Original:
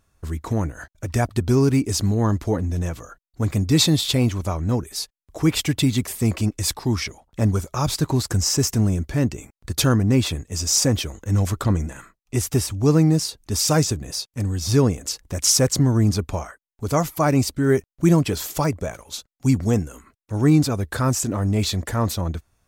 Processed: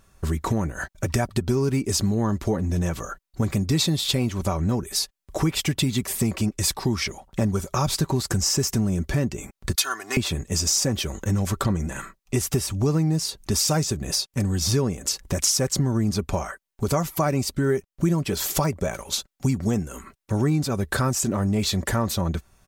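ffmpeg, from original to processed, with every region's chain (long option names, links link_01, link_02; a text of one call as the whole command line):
ffmpeg -i in.wav -filter_complex "[0:a]asettb=1/sr,asplit=3[link_01][link_02][link_03];[link_01]atrim=end=9.754[link_04];[link_02]atrim=start=9.75:end=10.17,asetpts=PTS-STARTPTS,afade=type=in:duration=0.004:curve=qsin,afade=type=out:start_time=0.416:duration=0.004:curve=qsin,highpass=1200,aecho=1:1:2.8:0.84,atrim=end_sample=18522[link_05];[link_03]atrim=start=10.166[link_06];[link_04][link_05]acrossfade=duration=0.004:curve1=hsin:curve2=qsin[link_07];[link_07][link_06]acrossfade=duration=0.004:curve1=qsin:curve2=hsin,aecho=1:1:5.2:0.33,acompressor=threshold=-29dB:ratio=4,volume=7.5dB" out.wav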